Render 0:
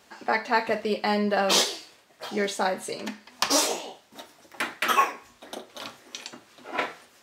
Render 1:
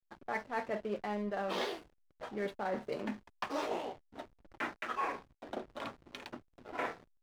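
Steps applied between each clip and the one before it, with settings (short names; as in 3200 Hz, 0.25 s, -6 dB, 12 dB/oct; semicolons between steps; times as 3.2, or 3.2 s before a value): LPF 2200 Hz 12 dB/oct; reverse; compressor 8:1, threshold -33 dBFS, peak gain reduction 17 dB; reverse; backlash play -43.5 dBFS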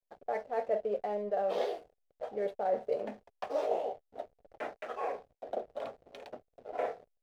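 band shelf 570 Hz +14.5 dB 1.1 oct; gain -7 dB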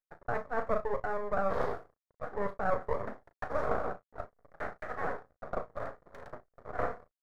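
half-wave rectifier; resonant high shelf 2200 Hz -7 dB, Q 3; doubler 36 ms -12 dB; gain +3.5 dB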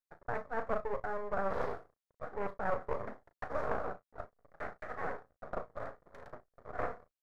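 Doppler distortion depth 0.38 ms; gain -3.5 dB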